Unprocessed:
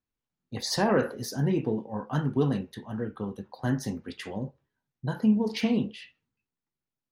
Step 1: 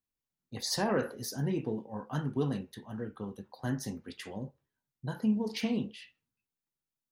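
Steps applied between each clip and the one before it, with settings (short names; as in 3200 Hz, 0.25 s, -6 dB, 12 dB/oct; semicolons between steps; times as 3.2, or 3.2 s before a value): high shelf 5500 Hz +7.5 dB; gain -6 dB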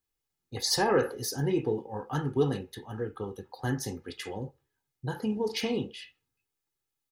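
comb 2.4 ms, depth 57%; gain +4 dB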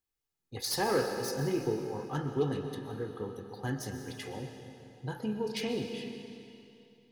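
self-modulated delay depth 0.063 ms; reverb RT60 2.8 s, pre-delay 85 ms, DRR 6 dB; gain -4 dB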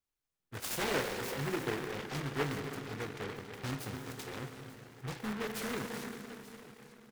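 in parallel at -10 dB: wrapped overs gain 30 dB; on the sum: feedback echo 0.885 s, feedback 48%, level -17.5 dB; noise-modulated delay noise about 1200 Hz, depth 0.25 ms; gain -4.5 dB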